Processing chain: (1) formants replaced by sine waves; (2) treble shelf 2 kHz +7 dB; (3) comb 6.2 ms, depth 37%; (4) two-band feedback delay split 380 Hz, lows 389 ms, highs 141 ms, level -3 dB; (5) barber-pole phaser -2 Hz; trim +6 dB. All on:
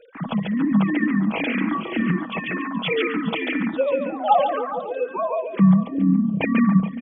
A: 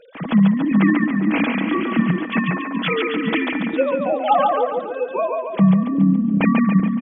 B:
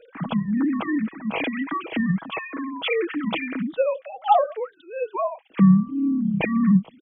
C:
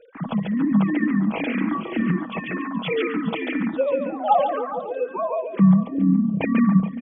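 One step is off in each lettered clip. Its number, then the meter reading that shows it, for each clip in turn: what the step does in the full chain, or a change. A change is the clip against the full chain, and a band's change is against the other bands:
5, loudness change +3.0 LU; 4, crest factor change +2.0 dB; 2, 2 kHz band -3.5 dB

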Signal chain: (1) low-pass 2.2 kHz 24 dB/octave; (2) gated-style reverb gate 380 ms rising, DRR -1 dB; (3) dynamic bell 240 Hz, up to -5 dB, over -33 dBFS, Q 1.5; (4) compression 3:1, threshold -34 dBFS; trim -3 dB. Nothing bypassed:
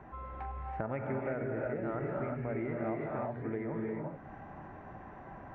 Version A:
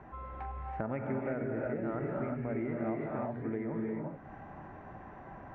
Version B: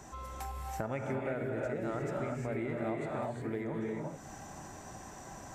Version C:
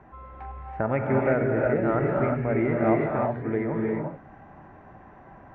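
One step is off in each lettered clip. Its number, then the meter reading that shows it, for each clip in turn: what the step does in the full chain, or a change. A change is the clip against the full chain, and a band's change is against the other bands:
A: 3, 250 Hz band +3.0 dB; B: 1, momentary loudness spread change -1 LU; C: 4, mean gain reduction 7.0 dB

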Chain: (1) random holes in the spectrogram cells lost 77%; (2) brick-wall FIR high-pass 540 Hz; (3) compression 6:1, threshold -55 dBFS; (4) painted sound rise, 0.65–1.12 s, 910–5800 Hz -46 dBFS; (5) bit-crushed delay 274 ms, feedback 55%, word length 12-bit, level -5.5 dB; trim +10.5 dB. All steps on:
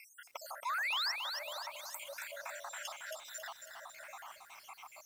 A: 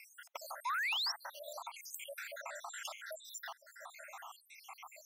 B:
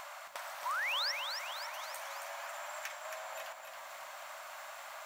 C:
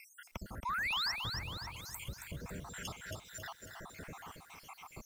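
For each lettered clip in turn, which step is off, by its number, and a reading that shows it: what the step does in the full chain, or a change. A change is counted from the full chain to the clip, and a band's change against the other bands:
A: 5, loudness change -1.0 LU; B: 1, 500 Hz band +2.0 dB; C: 2, 500 Hz band -2.5 dB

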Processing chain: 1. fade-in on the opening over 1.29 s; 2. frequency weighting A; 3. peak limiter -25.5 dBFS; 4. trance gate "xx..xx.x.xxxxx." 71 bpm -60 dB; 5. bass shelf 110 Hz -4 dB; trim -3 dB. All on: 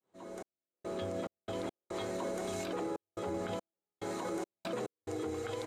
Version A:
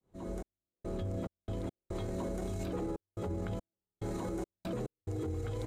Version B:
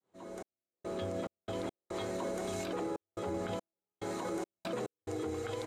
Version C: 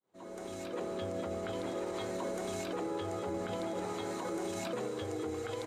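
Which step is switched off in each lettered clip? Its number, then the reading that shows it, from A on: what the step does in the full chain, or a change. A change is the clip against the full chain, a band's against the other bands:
2, 125 Hz band +15.0 dB; 5, 125 Hz band +1.5 dB; 4, crest factor change -2.0 dB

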